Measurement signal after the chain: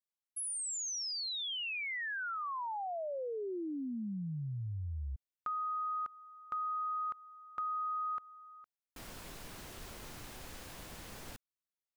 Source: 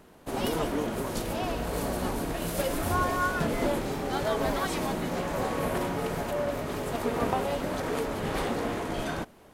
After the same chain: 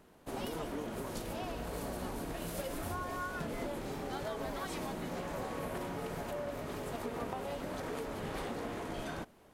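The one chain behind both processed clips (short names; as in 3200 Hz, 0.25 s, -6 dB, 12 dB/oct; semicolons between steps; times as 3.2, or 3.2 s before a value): compressor, threshold -28 dBFS; gain -7 dB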